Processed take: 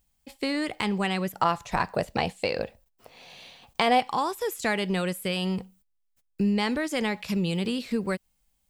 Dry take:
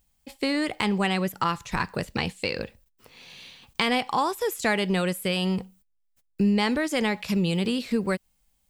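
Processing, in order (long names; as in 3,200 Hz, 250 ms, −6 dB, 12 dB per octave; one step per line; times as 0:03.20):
0:01.35–0:04.00: parametric band 680 Hz +13 dB 0.77 octaves
level −2.5 dB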